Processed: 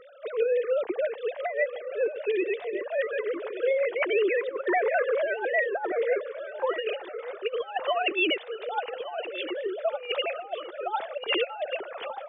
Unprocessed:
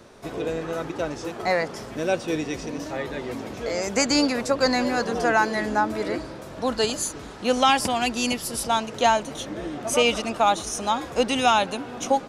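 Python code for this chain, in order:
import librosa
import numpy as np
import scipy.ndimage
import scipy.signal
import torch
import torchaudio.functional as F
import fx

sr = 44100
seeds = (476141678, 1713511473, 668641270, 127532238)

y = fx.sine_speech(x, sr)
y = fx.over_compress(y, sr, threshold_db=-26.0, ratio=-0.5)
y = fx.peak_eq(y, sr, hz=1300.0, db=-11.0, octaves=0.24, at=(0.53, 3.04))
y = fx.echo_feedback(y, sr, ms=1170, feedback_pct=22, wet_db=-12.5)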